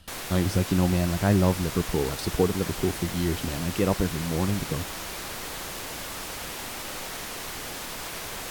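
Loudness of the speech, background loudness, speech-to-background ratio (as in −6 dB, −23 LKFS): −26.5 LKFS, −34.0 LKFS, 7.5 dB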